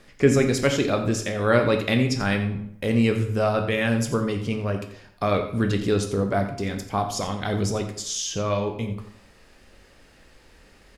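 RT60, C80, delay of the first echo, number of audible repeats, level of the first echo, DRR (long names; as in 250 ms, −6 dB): 0.70 s, 10.0 dB, 87 ms, 1, −13.0 dB, 4.5 dB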